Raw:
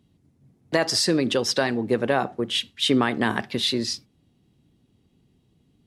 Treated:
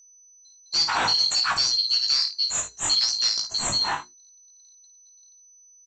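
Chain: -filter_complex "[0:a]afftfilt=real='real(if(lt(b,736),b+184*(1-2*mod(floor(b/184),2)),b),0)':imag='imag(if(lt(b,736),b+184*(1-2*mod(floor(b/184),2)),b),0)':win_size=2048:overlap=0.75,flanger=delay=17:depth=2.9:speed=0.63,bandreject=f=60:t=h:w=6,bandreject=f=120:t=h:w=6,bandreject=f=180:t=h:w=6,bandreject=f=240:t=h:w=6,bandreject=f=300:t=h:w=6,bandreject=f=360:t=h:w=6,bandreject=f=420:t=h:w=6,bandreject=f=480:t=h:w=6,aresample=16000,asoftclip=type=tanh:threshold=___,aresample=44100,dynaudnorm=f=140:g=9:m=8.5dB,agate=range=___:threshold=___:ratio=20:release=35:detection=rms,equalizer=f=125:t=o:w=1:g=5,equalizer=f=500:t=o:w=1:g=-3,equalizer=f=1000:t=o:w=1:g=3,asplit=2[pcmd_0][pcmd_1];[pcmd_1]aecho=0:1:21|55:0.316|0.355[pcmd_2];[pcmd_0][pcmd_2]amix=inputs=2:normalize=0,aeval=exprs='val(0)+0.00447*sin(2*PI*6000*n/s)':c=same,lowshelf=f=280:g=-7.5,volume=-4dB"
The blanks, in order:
-21.5dB, -23dB, -56dB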